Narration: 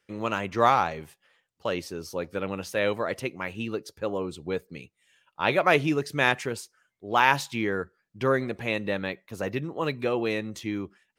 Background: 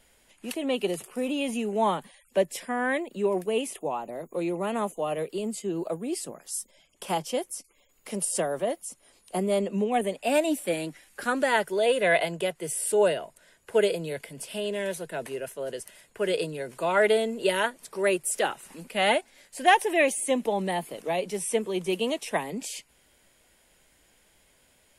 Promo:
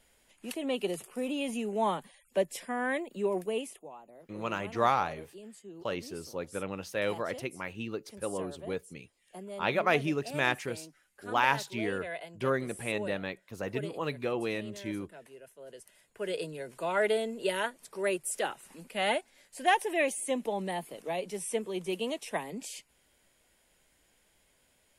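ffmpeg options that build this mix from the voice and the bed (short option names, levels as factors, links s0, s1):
-filter_complex "[0:a]adelay=4200,volume=0.531[s0];[1:a]volume=2.11,afade=t=out:st=3.47:d=0.4:silence=0.237137,afade=t=in:st=15.54:d=1.03:silence=0.281838[s1];[s0][s1]amix=inputs=2:normalize=0"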